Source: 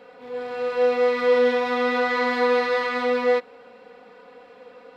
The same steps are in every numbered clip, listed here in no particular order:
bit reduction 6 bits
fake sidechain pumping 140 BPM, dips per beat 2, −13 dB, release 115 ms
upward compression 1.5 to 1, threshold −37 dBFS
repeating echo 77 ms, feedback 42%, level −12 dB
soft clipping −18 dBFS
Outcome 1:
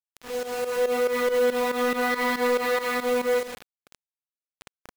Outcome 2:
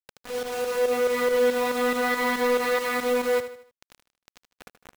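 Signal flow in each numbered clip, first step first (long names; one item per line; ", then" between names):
repeating echo, then soft clipping, then bit reduction, then upward compression, then fake sidechain pumping
soft clipping, then fake sidechain pumping, then upward compression, then bit reduction, then repeating echo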